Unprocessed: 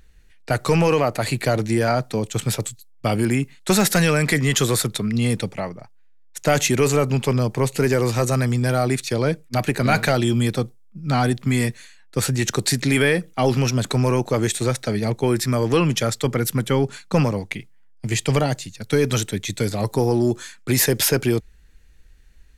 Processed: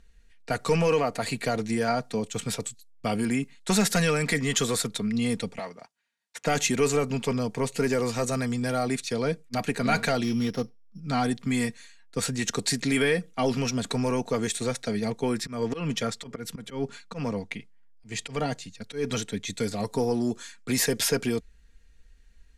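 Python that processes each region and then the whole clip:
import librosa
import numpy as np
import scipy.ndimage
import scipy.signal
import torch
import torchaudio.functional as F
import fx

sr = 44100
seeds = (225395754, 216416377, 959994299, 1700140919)

y = fx.chain(x, sr, fx.highpass(hz=530.0, slope=6),
    fx.leveller(passes=1),
    fx.band_squash(depth_pct=70), at=(5.59, 6.46))
y = fx.chain(y, sr, fx.sample_sort(block=8),
    fx.peak_eq(hz=9300.0, db=-11.5, octaves=1.0), at=(10.23, 11.0))
y = fx.chain(y, sr, fx.high_shelf(hz=6500.0, db=-7.0),
    fx.auto_swell(attack_ms=160.0), at=(15.36, 19.47))
y = scipy.signal.sosfilt(scipy.signal.butter(2, 8600.0, 'lowpass', fs=sr, output='sos'), y)
y = fx.high_shelf(y, sr, hz=6400.0, db=5.0)
y = y + 0.49 * np.pad(y, (int(4.3 * sr / 1000.0), 0))[:len(y)]
y = y * 10.0 ** (-7.0 / 20.0)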